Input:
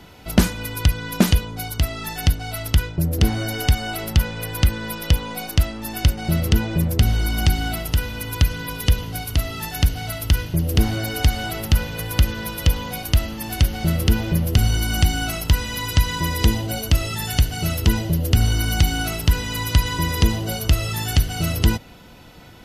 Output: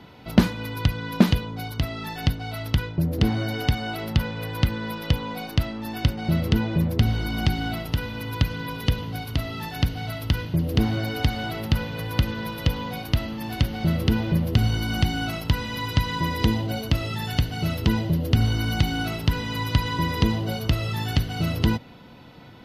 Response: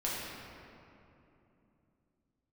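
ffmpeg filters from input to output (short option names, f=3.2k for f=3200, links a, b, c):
-af "equalizer=f=125:t=o:w=1:g=10,equalizer=f=250:t=o:w=1:g=9,equalizer=f=500:t=o:w=1:g=6,equalizer=f=1k:t=o:w=1:g=8,equalizer=f=2k:t=o:w=1:g=5,equalizer=f=4k:t=o:w=1:g=8,equalizer=f=8k:t=o:w=1:g=-7,volume=-11dB"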